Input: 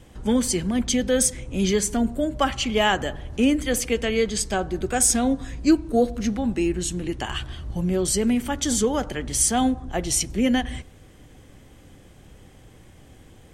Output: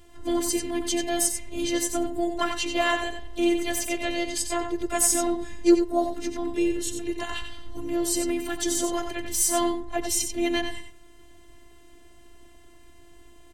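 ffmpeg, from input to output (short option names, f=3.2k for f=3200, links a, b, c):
-filter_complex "[0:a]asplit=2[a][b];[b]asetrate=58866,aresample=44100,atempo=0.749154,volume=-9dB[c];[a][c]amix=inputs=2:normalize=0,afftfilt=real='hypot(re,im)*cos(PI*b)':imag='0':win_size=512:overlap=0.75,aecho=1:1:91:0.422"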